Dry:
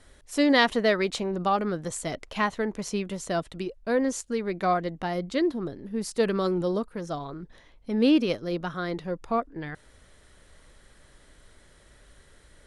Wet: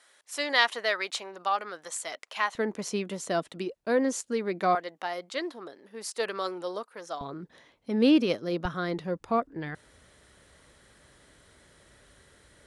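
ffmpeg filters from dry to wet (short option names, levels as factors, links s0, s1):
-af "asetnsamples=n=441:p=0,asendcmd='2.55 highpass f 200;4.75 highpass f 640;7.21 highpass f 160;8.65 highpass f 73',highpass=840"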